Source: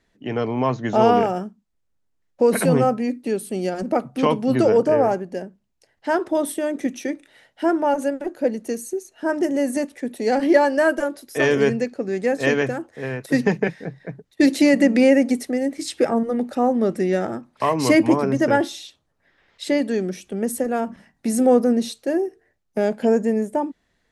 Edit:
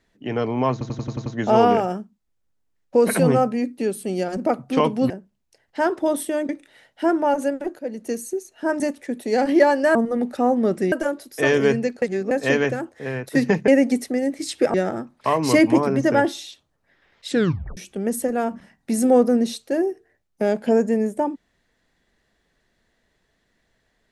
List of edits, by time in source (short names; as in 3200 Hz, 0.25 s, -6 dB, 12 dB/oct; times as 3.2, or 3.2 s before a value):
0.72 stutter 0.09 s, 7 plays
4.56–5.39 cut
6.78–7.09 cut
8.39–8.72 fade in, from -14 dB
9.4–9.74 cut
11.99–12.28 reverse
13.65–15.07 cut
16.13–17.1 move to 10.89
19.65 tape stop 0.48 s